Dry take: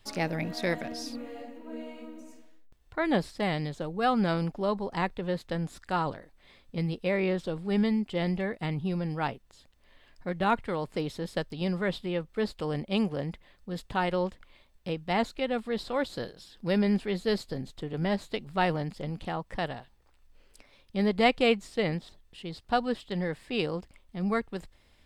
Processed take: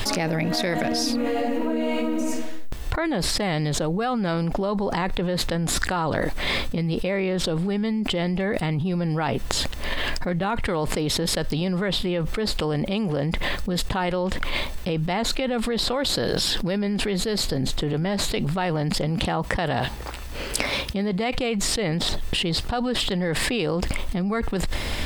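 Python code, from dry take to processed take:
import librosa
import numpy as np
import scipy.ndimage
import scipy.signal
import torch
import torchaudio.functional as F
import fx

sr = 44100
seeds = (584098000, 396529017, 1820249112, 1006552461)

y = fx.highpass(x, sr, hz=43.0, slope=12, at=(19.05, 21.35))
y = fx.env_flatten(y, sr, amount_pct=100)
y = F.gain(torch.from_numpy(y), -5.0).numpy()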